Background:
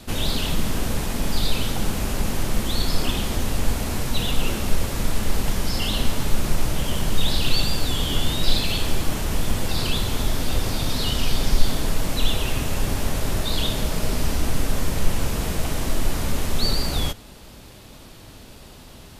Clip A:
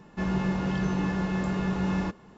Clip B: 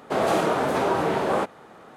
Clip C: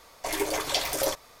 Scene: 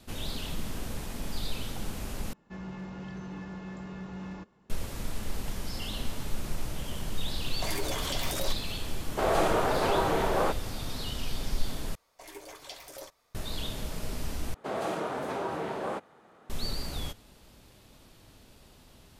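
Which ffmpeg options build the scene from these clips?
-filter_complex "[3:a]asplit=2[a][b];[2:a]asplit=2[c][d];[0:a]volume=-12dB[e];[1:a]asoftclip=type=hard:threshold=-22.5dB[f];[a]acompressor=threshold=-31dB:ratio=6:attack=3.2:release=140:knee=1:detection=peak[g];[c]equalizer=f=240:t=o:w=0.4:g=-7.5[h];[e]asplit=4[i][j][k][l];[i]atrim=end=2.334[m];[f]atrim=end=2.37,asetpts=PTS-STARTPTS,volume=-12.5dB[n];[j]atrim=start=4.696:end=11.954[o];[b]atrim=end=1.4,asetpts=PTS-STARTPTS,volume=-17.5dB[p];[k]atrim=start=13.346:end=14.544[q];[d]atrim=end=1.96,asetpts=PTS-STARTPTS,volume=-10.5dB[r];[l]atrim=start=16.496[s];[g]atrim=end=1.4,asetpts=PTS-STARTPTS,afade=t=in:d=0.004:c=hsin,afade=t=out:st=1.396:d=0.004:c=hsin,adelay=325458S[t];[h]atrim=end=1.96,asetpts=PTS-STARTPTS,volume=-3.5dB,afade=t=in:d=0.004:c=hsin,afade=t=out:st=1.956:d=0.004:c=hsin,adelay=9070[u];[m][n]acrossfade=d=0.004:c1=hsin:c2=hsin[v];[v][o]acrossfade=d=0.004:c1=hsin:c2=hsin[w];[w][p]acrossfade=d=0.004:c1=hsin:c2=hsin[x];[x][q]acrossfade=d=0.004:c1=hsin:c2=hsin[y];[y][r]acrossfade=d=0.004:c1=hsin:c2=hsin[z];[z][s]acrossfade=d=0.004:c1=hsin:c2=hsin[aa];[aa][t][u]amix=inputs=3:normalize=0"

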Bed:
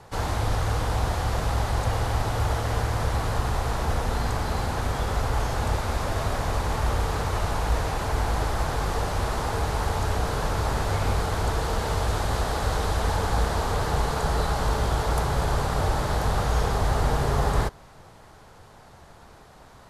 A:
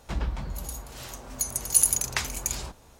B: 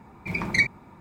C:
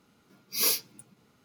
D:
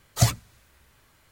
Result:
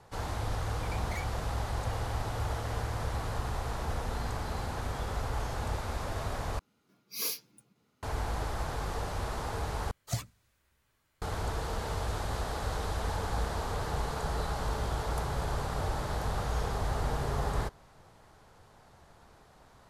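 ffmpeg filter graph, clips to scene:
-filter_complex "[0:a]volume=-8.5dB[a];[2:a]asoftclip=type=tanh:threshold=-26.5dB[b];[a]asplit=3[c][d][e];[c]atrim=end=6.594[f];[3:a]atrim=end=1.44,asetpts=PTS-STARTPTS,volume=-8.5dB[g];[d]atrim=start=8.026:end=9.914[h];[4:a]atrim=end=1.31,asetpts=PTS-STARTPTS,volume=-14dB[i];[e]atrim=start=11.216[j];[b]atrim=end=1,asetpts=PTS-STARTPTS,volume=-13dB,afade=t=in:d=0.004:c=hsin,afade=t=out:st=0.996:d=0.004:c=hsin,adelay=570[k];[f][g]acrossfade=d=0.004:c1=hsin:c2=hsin[l];[l][h]acrossfade=d=0.004:c1=hsin:c2=hsin[m];[m][i]acrossfade=d=0.004:c1=hsin:c2=hsin[n];[n][j]acrossfade=d=0.004:c1=hsin:c2=hsin[o];[o][k]amix=inputs=2:normalize=0"

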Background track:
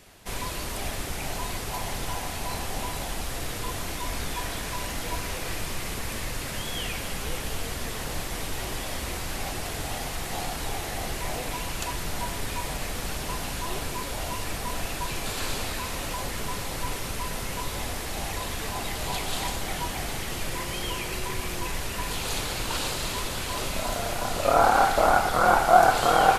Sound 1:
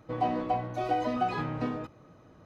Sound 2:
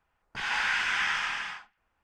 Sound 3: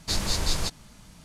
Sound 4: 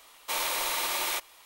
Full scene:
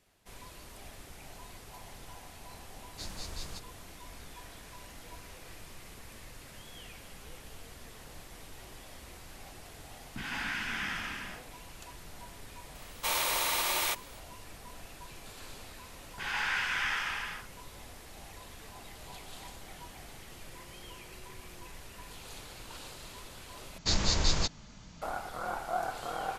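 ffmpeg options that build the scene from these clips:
-filter_complex "[3:a]asplit=2[a][b];[2:a]asplit=2[c][d];[0:a]volume=-17dB[e];[c]lowshelf=f=380:t=q:w=3:g=11.5[f];[b]aresample=16000,aresample=44100[g];[e]asplit=2[h][i];[h]atrim=end=23.784[j];[g]atrim=end=1.24,asetpts=PTS-STARTPTS,volume=-1dB[k];[i]atrim=start=25.016[l];[a]atrim=end=1.24,asetpts=PTS-STARTPTS,volume=-15.5dB,afade=t=in:d=0.004:c=hsin,afade=t=out:st=1.236:d=0.004:c=hsin,adelay=2900[m];[f]atrim=end=2.03,asetpts=PTS-STARTPTS,volume=-7.5dB,afade=t=in:d=0.004:c=hsin,afade=t=out:st=2.026:d=0.004:c=hsin,adelay=9810[n];[4:a]atrim=end=1.45,asetpts=PTS-STARTPTS,volume=-0.5dB,afade=t=in:d=0.004:c=hsin,afade=t=out:st=1.446:d=0.004:c=hsin,adelay=12750[o];[d]atrim=end=2.03,asetpts=PTS-STARTPTS,volume=-4dB,afade=t=in:d=0.004:c=hsin,afade=t=out:st=2.026:d=0.004:c=hsin,adelay=15830[p];[j][k]acrossfade=d=0.004:c1=hsin:c2=hsin[q];[q][l]acrossfade=d=0.004:c1=hsin:c2=hsin[r];[r][m][n][o][p]amix=inputs=5:normalize=0"

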